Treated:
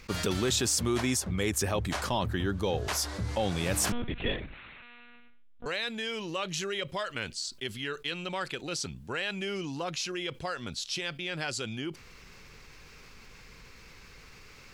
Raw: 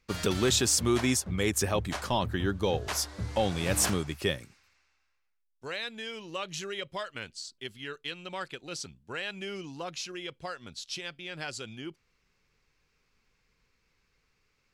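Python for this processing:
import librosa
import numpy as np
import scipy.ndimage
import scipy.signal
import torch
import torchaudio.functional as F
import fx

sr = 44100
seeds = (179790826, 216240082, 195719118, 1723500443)

y = fx.lpc_monotone(x, sr, seeds[0], pitch_hz=240.0, order=8, at=(3.92, 5.66))
y = fx.env_flatten(y, sr, amount_pct=50)
y = y * librosa.db_to_amplitude(-3.5)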